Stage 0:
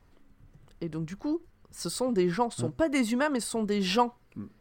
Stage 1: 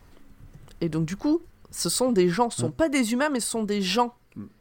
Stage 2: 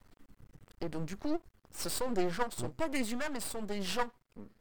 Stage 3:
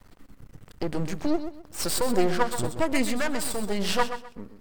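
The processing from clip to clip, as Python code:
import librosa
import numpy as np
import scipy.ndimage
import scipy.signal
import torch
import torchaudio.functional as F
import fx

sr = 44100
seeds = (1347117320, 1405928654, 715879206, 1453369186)

y1 = fx.high_shelf(x, sr, hz=4700.0, db=5.5)
y1 = fx.rider(y1, sr, range_db=4, speed_s=2.0)
y1 = y1 * 10.0 ** (4.0 / 20.0)
y2 = np.maximum(y1, 0.0)
y2 = y2 * 10.0 ** (-6.0 / 20.0)
y3 = fx.echo_feedback(y2, sr, ms=128, feedback_pct=26, wet_db=-10.0)
y3 = y3 * 10.0 ** (8.5 / 20.0)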